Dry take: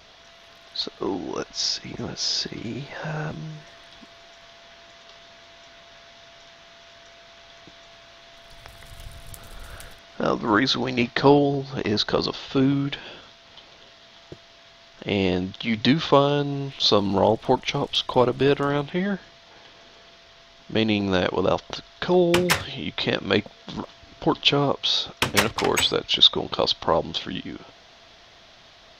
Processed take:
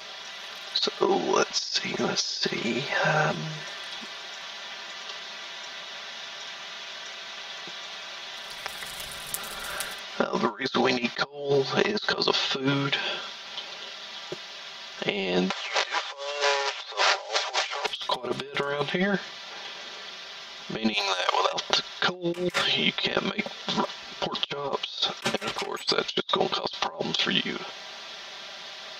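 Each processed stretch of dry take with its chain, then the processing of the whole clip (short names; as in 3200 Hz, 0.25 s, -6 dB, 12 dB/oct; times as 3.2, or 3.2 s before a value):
15.5–17.86 delta modulation 32 kbps, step -19 dBFS + steep high-pass 470 Hz + three-band squash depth 70%
20.93–21.53 HPF 590 Hz 24 dB/oct + high shelf 5100 Hz +10.5 dB + core saturation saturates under 1900 Hz
whole clip: HPF 620 Hz 6 dB/oct; comb 5.1 ms, depth 82%; negative-ratio compressor -29 dBFS, ratio -0.5; gain +3 dB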